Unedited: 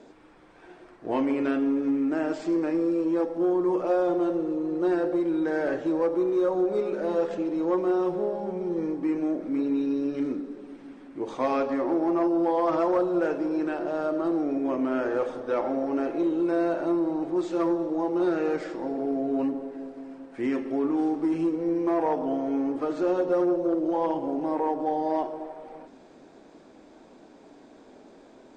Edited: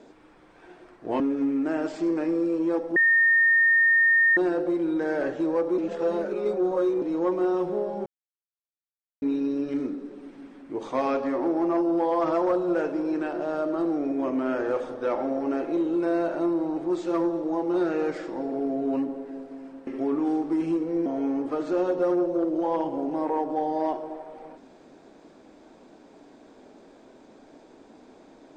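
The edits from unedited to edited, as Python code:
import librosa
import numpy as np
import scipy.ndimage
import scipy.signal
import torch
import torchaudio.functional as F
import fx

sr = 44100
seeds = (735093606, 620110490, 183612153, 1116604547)

y = fx.edit(x, sr, fx.cut(start_s=1.2, length_s=0.46),
    fx.bleep(start_s=3.42, length_s=1.41, hz=1830.0, db=-16.0),
    fx.reverse_span(start_s=6.24, length_s=1.24),
    fx.silence(start_s=8.52, length_s=1.16),
    fx.cut(start_s=20.33, length_s=0.26),
    fx.cut(start_s=21.78, length_s=0.58), tone=tone)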